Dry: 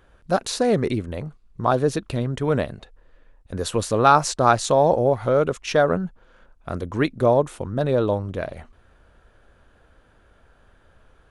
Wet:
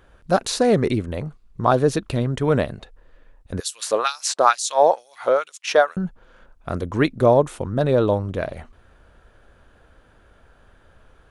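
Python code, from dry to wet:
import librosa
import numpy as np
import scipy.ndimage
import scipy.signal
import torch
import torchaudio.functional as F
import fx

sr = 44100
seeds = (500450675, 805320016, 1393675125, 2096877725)

y = fx.filter_lfo_highpass(x, sr, shape='sine', hz=2.2, low_hz=500.0, high_hz=5700.0, q=1.1, at=(3.6, 5.97))
y = y * librosa.db_to_amplitude(2.5)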